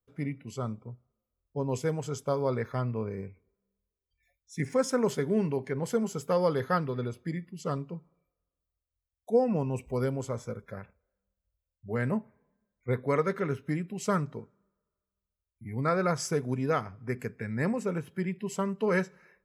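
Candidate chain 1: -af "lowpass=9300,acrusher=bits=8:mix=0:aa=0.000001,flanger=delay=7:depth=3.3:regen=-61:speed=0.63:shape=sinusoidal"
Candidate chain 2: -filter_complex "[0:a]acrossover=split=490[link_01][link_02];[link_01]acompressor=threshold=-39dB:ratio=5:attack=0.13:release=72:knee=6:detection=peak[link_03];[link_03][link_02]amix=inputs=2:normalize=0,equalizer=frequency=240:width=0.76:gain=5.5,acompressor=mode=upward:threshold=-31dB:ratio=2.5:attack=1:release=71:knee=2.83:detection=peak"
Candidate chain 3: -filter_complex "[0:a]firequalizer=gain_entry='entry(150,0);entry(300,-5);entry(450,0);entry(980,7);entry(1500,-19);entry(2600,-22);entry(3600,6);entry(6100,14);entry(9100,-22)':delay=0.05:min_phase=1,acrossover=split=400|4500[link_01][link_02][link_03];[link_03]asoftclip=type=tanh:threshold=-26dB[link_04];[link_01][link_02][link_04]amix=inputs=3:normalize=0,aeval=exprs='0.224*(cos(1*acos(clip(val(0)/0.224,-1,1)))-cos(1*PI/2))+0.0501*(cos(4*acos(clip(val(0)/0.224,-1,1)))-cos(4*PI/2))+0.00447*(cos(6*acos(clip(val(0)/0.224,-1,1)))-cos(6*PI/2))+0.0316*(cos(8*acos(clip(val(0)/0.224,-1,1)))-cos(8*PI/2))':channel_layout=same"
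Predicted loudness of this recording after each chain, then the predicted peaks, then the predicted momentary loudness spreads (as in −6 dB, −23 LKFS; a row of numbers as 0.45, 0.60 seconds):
−35.5, −33.5, −29.5 LKFS; −16.5, −13.0, −10.0 dBFS; 12, 15, 14 LU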